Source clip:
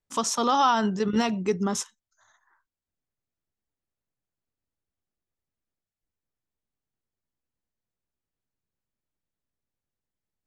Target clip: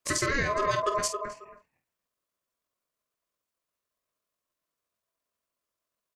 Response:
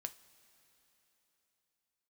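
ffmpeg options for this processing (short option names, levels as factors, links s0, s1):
-filter_complex "[0:a]highpass=f=150:w=0.5412,highpass=f=150:w=1.3066,highshelf=f=5300:g=2.5,asplit=2[s0][s1];[s1]adelay=458,lowpass=f=1100:p=1,volume=0.237,asplit=2[s2][s3];[s3]adelay=458,lowpass=f=1100:p=1,volume=0.18[s4];[s2][s4]amix=inputs=2:normalize=0[s5];[s0][s5]amix=inputs=2:normalize=0,acompressor=threshold=0.0316:ratio=5,aeval=exprs='val(0)*sin(2*PI*830*n/s)':c=same,atempo=1.7,asplit=2[s6][s7];[s7]aecho=0:1:23|50:0.266|0.316[s8];[s6][s8]amix=inputs=2:normalize=0,volume=2.51"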